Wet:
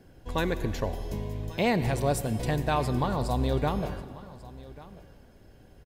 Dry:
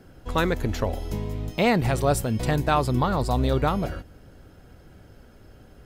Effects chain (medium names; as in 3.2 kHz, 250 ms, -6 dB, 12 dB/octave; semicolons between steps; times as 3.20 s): band-stop 1.3 kHz, Q 5.5; delay 1141 ms -19 dB; reverberation RT60 2.1 s, pre-delay 69 ms, DRR 12.5 dB; trim -4.5 dB